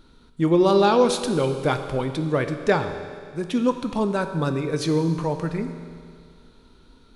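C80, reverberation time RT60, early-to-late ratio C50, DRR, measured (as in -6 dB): 9.5 dB, 2.1 s, 8.5 dB, 7.0 dB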